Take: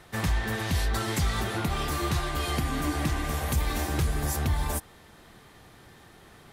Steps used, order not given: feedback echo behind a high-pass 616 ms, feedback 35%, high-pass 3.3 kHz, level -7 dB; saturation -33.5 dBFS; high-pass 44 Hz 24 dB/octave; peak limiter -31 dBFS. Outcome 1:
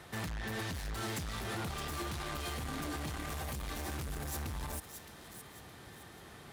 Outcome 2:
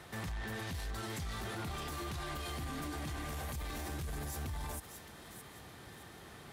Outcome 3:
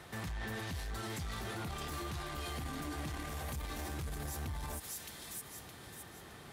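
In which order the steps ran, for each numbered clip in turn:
saturation > high-pass > peak limiter > feedback echo behind a high-pass; high-pass > peak limiter > saturation > feedback echo behind a high-pass; feedback echo behind a high-pass > peak limiter > saturation > high-pass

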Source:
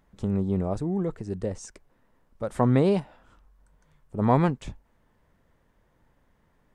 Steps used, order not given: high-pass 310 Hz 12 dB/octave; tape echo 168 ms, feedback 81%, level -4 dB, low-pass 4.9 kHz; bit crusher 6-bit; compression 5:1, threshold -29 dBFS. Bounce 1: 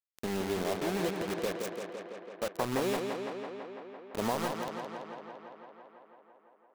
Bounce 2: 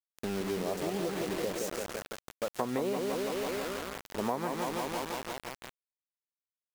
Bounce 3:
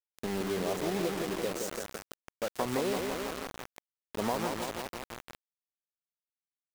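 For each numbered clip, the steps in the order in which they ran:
high-pass > compression > bit crusher > tape echo; high-pass > tape echo > bit crusher > compression; high-pass > compression > tape echo > bit crusher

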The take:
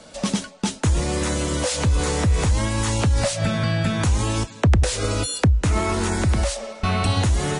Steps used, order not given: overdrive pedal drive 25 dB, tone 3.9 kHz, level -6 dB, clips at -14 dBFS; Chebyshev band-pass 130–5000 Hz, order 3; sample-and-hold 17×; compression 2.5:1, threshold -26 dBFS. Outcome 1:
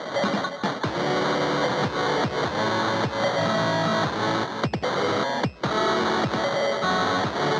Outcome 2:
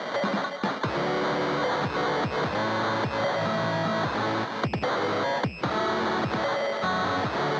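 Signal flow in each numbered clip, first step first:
compression > overdrive pedal > sample-and-hold > Chebyshev band-pass; sample-and-hold > overdrive pedal > Chebyshev band-pass > compression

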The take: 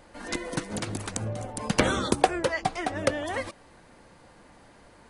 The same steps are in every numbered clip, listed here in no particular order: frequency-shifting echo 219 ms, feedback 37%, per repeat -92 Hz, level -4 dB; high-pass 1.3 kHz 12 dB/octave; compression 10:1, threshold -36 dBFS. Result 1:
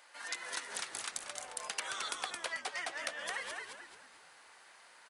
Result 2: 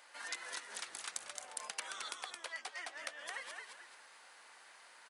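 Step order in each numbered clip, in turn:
high-pass > compression > frequency-shifting echo; compression > frequency-shifting echo > high-pass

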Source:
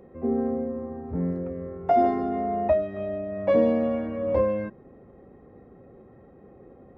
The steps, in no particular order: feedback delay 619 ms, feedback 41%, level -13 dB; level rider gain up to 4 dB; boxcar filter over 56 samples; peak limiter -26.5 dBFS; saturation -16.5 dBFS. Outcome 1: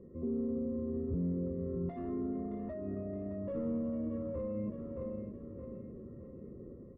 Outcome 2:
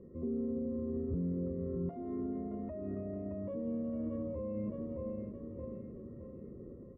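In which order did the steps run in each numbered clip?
level rider > saturation > feedback delay > peak limiter > boxcar filter; level rider > feedback delay > peak limiter > saturation > boxcar filter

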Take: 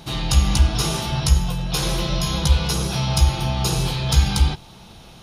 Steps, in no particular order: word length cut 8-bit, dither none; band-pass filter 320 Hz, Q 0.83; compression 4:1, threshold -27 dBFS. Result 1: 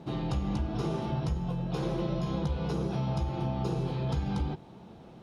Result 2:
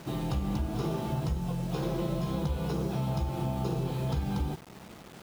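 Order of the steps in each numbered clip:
word length cut > band-pass filter > compression; band-pass filter > word length cut > compression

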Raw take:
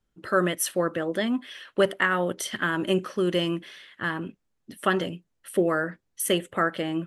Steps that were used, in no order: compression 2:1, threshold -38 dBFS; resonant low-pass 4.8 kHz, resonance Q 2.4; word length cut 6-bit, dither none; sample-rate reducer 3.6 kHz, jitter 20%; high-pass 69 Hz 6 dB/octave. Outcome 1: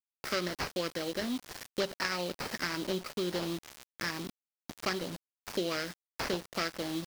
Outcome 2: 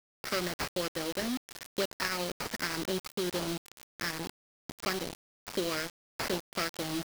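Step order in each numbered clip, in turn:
high-pass > sample-rate reducer > resonant low-pass > word length cut > compression; high-pass > sample-rate reducer > resonant low-pass > compression > word length cut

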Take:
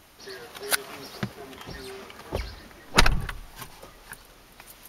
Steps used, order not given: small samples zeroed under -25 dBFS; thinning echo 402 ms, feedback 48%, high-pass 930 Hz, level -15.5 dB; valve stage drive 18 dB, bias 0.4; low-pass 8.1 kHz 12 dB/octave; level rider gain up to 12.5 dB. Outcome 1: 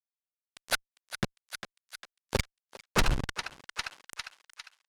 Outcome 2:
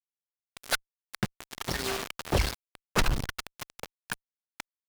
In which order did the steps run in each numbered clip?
small samples zeroed > thinning echo > level rider > low-pass > valve stage; low-pass > level rider > thinning echo > small samples zeroed > valve stage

